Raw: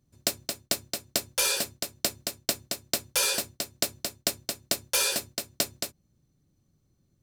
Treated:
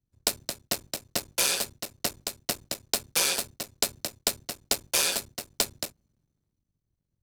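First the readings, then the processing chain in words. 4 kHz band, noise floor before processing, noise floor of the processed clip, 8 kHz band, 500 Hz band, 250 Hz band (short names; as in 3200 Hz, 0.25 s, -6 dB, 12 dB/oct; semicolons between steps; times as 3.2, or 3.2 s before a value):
0.0 dB, -71 dBFS, -82 dBFS, 0.0 dB, -0.5 dB, -1.0 dB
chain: cycle switcher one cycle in 3, muted; wow and flutter 23 cents; three-band expander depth 40%; gain +1.5 dB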